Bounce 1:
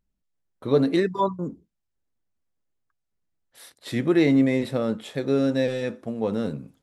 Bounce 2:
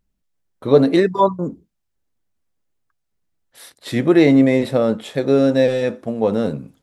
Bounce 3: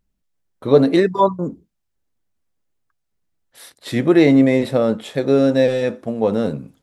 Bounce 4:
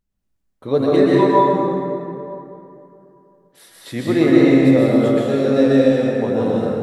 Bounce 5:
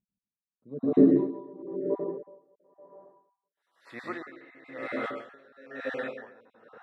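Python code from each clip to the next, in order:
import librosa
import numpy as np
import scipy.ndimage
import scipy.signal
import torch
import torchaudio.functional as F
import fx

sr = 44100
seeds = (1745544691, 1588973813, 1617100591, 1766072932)

y1 = fx.dynamic_eq(x, sr, hz=640.0, q=1.3, threshold_db=-37.0, ratio=4.0, max_db=5)
y1 = y1 * 10.0 ** (5.5 / 20.0)
y2 = y1
y3 = fx.rev_plate(y2, sr, seeds[0], rt60_s=2.9, hf_ratio=0.55, predelay_ms=110, drr_db=-6.0)
y3 = y3 * 10.0 ** (-6.0 / 20.0)
y4 = fx.spec_dropout(y3, sr, seeds[1], share_pct=21)
y4 = fx.filter_sweep_bandpass(y4, sr, from_hz=200.0, to_hz=1600.0, start_s=0.7, end_s=4.47, q=2.3)
y4 = y4 * 10.0 ** (-25 * (0.5 - 0.5 * np.cos(2.0 * np.pi * 1.0 * np.arange(len(y4)) / sr)) / 20.0)
y4 = y4 * 10.0 ** (1.5 / 20.0)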